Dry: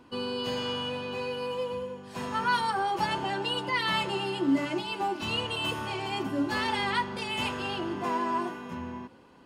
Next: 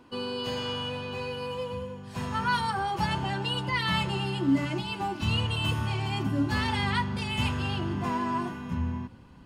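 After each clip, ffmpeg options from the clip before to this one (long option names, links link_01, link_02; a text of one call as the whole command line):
ffmpeg -i in.wav -af "asubboost=boost=8.5:cutoff=140" out.wav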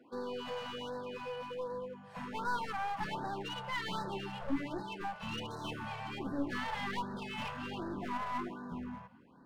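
ffmpeg -i in.wav -filter_complex "[0:a]acrossover=split=190 2400:gain=0.0794 1 0.2[link_01][link_02][link_03];[link_01][link_02][link_03]amix=inputs=3:normalize=0,aeval=exprs='clip(val(0),-1,0.0158)':channel_layout=same,afftfilt=real='re*(1-between(b*sr/1024,280*pow(2700/280,0.5+0.5*sin(2*PI*1.3*pts/sr))/1.41,280*pow(2700/280,0.5+0.5*sin(2*PI*1.3*pts/sr))*1.41))':imag='im*(1-between(b*sr/1024,280*pow(2700/280,0.5+0.5*sin(2*PI*1.3*pts/sr))/1.41,280*pow(2700/280,0.5+0.5*sin(2*PI*1.3*pts/sr))*1.41))':win_size=1024:overlap=0.75,volume=-3.5dB" out.wav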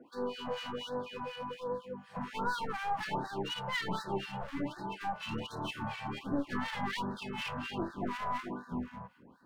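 ffmpeg -i in.wav -filter_complex "[0:a]acrossover=split=1400[link_01][link_02];[link_01]aeval=exprs='val(0)*(1-1/2+1/2*cos(2*PI*4.1*n/s))':channel_layout=same[link_03];[link_02]aeval=exprs='val(0)*(1-1/2-1/2*cos(2*PI*4.1*n/s))':channel_layout=same[link_04];[link_03][link_04]amix=inputs=2:normalize=0,volume=7dB" out.wav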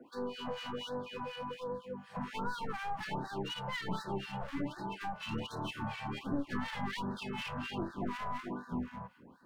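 ffmpeg -i in.wav -filter_complex "[0:a]acrossover=split=250[link_01][link_02];[link_02]acompressor=threshold=-40dB:ratio=2.5[link_03];[link_01][link_03]amix=inputs=2:normalize=0,volume=1dB" out.wav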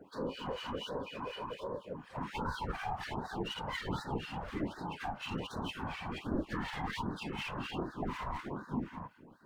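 ffmpeg -i in.wav -af "afftfilt=real='hypot(re,im)*cos(2*PI*random(0))':imag='hypot(re,im)*sin(2*PI*random(1))':win_size=512:overlap=0.75,volume=6dB" out.wav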